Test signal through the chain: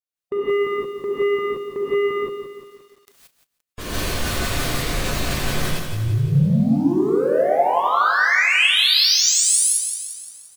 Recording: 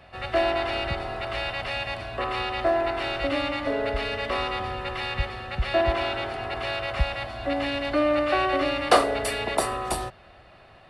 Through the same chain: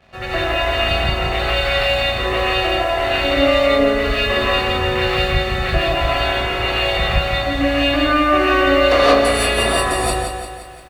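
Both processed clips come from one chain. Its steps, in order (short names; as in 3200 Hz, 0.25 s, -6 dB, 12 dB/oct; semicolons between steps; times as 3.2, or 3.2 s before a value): spectral gate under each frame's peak -25 dB strong; bell 850 Hz -7 dB 0.3 oct; in parallel at 0 dB: compressor 12:1, threshold -29 dBFS; on the sum: sample leveller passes 2; doubler 36 ms -13.5 dB; on a send: feedback echo 0.154 s, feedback 23%, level -12.5 dB; on the sum: non-linear reverb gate 0.2 s rising, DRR -7.5 dB; lo-fi delay 0.174 s, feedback 55%, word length 7-bit, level -8 dB; gain -8.5 dB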